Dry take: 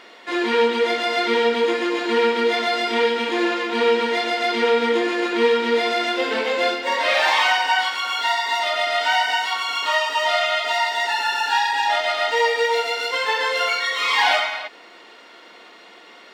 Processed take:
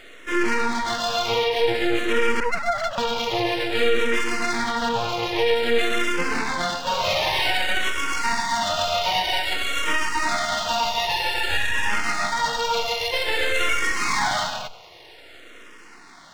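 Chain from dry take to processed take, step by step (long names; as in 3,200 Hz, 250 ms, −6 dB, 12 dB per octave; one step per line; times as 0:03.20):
0:02.40–0:02.98: three sine waves on the formant tracks
feedback echo with a low-pass in the loop 97 ms, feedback 78%, low-pass 1,100 Hz, level −20.5 dB
half-wave rectification
boost into a limiter +11.5 dB
frequency shifter mixed with the dry sound −0.52 Hz
level −5.5 dB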